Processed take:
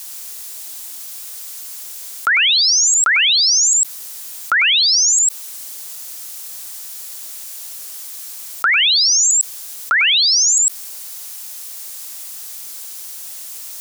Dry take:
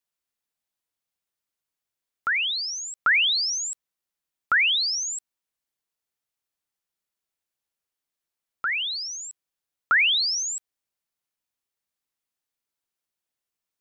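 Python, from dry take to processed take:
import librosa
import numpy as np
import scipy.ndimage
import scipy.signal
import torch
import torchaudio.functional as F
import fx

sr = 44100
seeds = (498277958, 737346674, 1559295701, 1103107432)

y = fx.bass_treble(x, sr, bass_db=-11, treble_db=13)
y = y + 10.0 ** (-8.0 / 20.0) * np.pad(y, (int(100 * sr / 1000.0), 0))[:len(y)]
y = fx.dynamic_eq(y, sr, hz=7100.0, q=1.4, threshold_db=-28.0, ratio=4.0, max_db=-5)
y = fx.env_flatten(y, sr, amount_pct=100)
y = F.gain(torch.from_numpy(y), 3.0).numpy()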